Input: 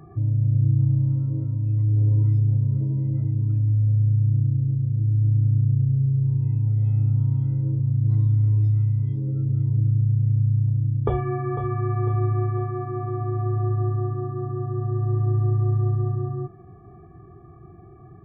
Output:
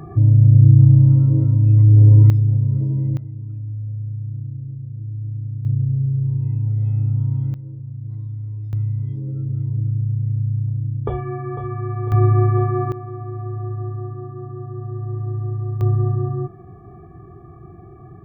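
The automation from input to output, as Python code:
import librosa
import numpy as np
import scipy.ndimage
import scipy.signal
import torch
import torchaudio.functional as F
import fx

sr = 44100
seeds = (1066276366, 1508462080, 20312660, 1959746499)

y = fx.gain(x, sr, db=fx.steps((0.0, 10.0), (2.3, 3.5), (3.17, -8.0), (5.65, 1.0), (7.54, -10.0), (8.73, -1.0), (12.12, 8.0), (12.92, -3.5), (15.81, 5.0)))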